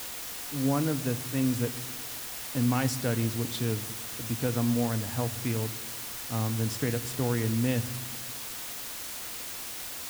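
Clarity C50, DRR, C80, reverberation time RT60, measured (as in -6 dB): 17.5 dB, 11.5 dB, 18.5 dB, 1.4 s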